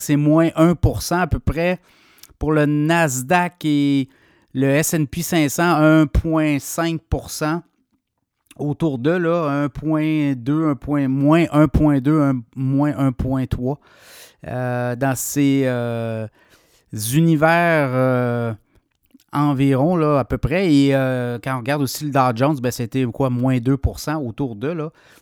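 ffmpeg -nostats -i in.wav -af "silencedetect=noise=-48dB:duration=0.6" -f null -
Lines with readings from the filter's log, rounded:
silence_start: 7.66
silence_end: 8.46 | silence_duration: 0.80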